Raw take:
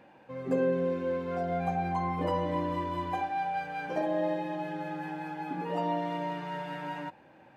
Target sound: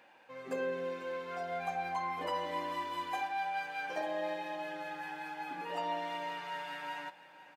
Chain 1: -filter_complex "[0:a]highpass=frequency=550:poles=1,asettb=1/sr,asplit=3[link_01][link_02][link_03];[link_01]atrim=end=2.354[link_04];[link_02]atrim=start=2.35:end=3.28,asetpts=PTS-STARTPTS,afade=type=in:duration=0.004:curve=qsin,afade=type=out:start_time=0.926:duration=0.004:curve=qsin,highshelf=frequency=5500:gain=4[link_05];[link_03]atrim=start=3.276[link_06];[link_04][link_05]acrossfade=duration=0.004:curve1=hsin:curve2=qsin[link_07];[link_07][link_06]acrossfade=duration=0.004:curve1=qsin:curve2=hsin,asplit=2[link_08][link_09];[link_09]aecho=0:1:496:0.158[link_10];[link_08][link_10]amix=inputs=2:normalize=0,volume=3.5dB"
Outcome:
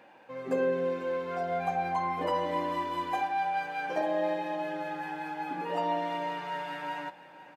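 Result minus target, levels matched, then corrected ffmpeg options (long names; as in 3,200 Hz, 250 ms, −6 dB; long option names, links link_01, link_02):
2,000 Hz band −3.5 dB
-filter_complex "[0:a]highpass=frequency=1800:poles=1,asettb=1/sr,asplit=3[link_01][link_02][link_03];[link_01]atrim=end=2.354[link_04];[link_02]atrim=start=2.35:end=3.28,asetpts=PTS-STARTPTS,afade=type=in:duration=0.004:curve=qsin,afade=type=out:start_time=0.926:duration=0.004:curve=qsin,highshelf=frequency=5500:gain=4[link_05];[link_03]atrim=start=3.276[link_06];[link_04][link_05]acrossfade=duration=0.004:curve1=hsin:curve2=qsin[link_07];[link_07][link_06]acrossfade=duration=0.004:curve1=qsin:curve2=hsin,asplit=2[link_08][link_09];[link_09]aecho=0:1:496:0.158[link_10];[link_08][link_10]amix=inputs=2:normalize=0,volume=3.5dB"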